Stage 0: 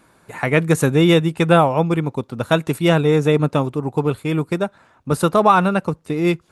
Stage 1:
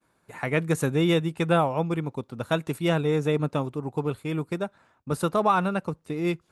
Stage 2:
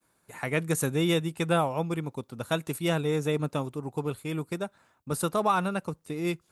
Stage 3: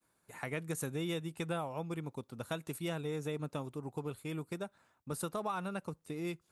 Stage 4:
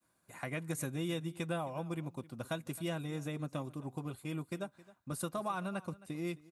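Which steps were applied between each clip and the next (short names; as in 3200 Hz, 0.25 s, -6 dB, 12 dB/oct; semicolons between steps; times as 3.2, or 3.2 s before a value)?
expander -49 dBFS; gain -8.5 dB
high shelf 5700 Hz +12 dB; gain -3.5 dB
compressor 2.5:1, threshold -30 dBFS, peak gain reduction 7.5 dB; gain -6 dB
notch comb 440 Hz; echo 0.266 s -19.5 dB; gain +1 dB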